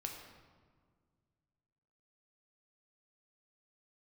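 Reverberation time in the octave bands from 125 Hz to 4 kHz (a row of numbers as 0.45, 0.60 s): 2.8, 2.4, 1.9, 1.6, 1.2, 1.0 s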